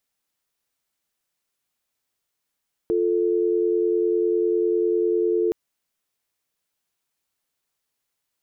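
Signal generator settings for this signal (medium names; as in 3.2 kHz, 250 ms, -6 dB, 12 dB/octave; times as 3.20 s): call progress tone dial tone, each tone -21 dBFS 2.62 s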